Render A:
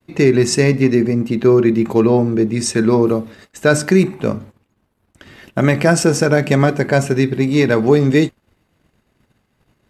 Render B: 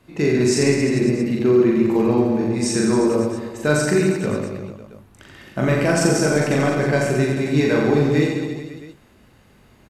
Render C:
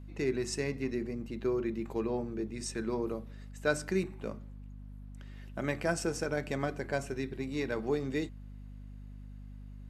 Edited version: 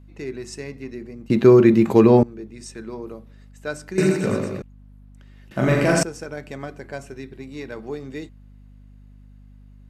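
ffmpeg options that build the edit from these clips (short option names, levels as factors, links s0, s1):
-filter_complex "[1:a]asplit=2[s0][s1];[2:a]asplit=4[s2][s3][s4][s5];[s2]atrim=end=1.302[s6];[0:a]atrim=start=1.298:end=2.232[s7];[s3]atrim=start=2.228:end=3.982[s8];[s0]atrim=start=3.978:end=4.622[s9];[s4]atrim=start=4.618:end=5.512[s10];[s1]atrim=start=5.508:end=6.032[s11];[s5]atrim=start=6.028[s12];[s6][s7]acrossfade=d=0.004:c1=hsin:c2=hsin[s13];[s13][s8]acrossfade=d=0.004:c1=hsin:c2=hsin[s14];[s14][s9]acrossfade=d=0.004:c1=hsin:c2=hsin[s15];[s15][s10]acrossfade=d=0.004:c1=hsin:c2=hsin[s16];[s16][s11]acrossfade=d=0.004:c1=hsin:c2=hsin[s17];[s17][s12]acrossfade=d=0.004:c1=hsin:c2=hsin"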